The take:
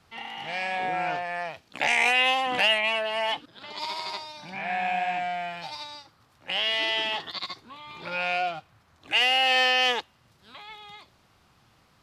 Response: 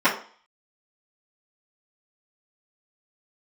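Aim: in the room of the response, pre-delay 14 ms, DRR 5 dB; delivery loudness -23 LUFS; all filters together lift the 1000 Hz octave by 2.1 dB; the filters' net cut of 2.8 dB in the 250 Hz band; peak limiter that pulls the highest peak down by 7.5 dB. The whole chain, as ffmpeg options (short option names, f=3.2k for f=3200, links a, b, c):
-filter_complex "[0:a]equalizer=f=250:t=o:g=-4,equalizer=f=1k:t=o:g=3.5,alimiter=limit=-17dB:level=0:latency=1,asplit=2[a][b];[1:a]atrim=start_sample=2205,adelay=14[c];[b][c]afir=irnorm=-1:irlink=0,volume=-24.5dB[d];[a][d]amix=inputs=2:normalize=0,volume=4dB"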